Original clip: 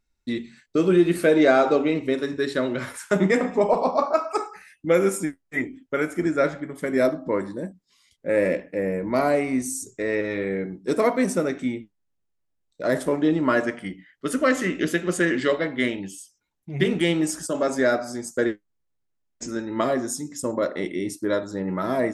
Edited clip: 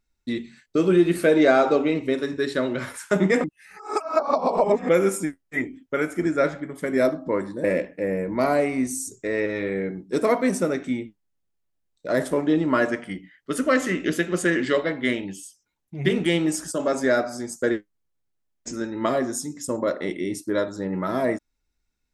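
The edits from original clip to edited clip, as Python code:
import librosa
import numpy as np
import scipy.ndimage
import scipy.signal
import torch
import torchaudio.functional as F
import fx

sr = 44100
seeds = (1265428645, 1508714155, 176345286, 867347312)

y = fx.edit(x, sr, fx.reverse_span(start_s=3.44, length_s=1.45),
    fx.cut(start_s=7.64, length_s=0.75), tone=tone)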